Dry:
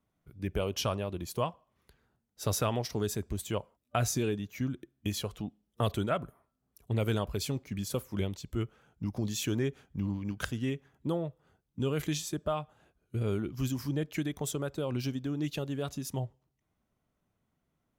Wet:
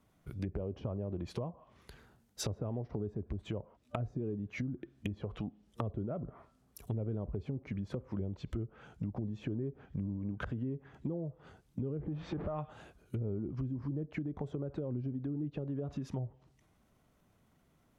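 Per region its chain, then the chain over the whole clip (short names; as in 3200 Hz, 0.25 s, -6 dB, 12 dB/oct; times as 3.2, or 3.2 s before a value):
11.97–12.59 zero-crossing step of -37 dBFS + compressor 2:1, threshold -33 dBFS + tape spacing loss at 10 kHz 42 dB
whole clip: treble ducked by the level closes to 490 Hz, closed at -29.5 dBFS; compressor 6:1, threshold -44 dBFS; transient shaper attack -1 dB, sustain +4 dB; gain +9 dB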